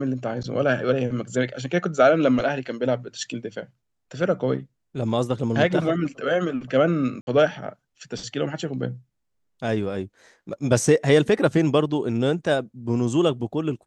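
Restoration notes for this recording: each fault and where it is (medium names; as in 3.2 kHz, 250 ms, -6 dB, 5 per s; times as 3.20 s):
7.21–7.27 s: dropout 61 ms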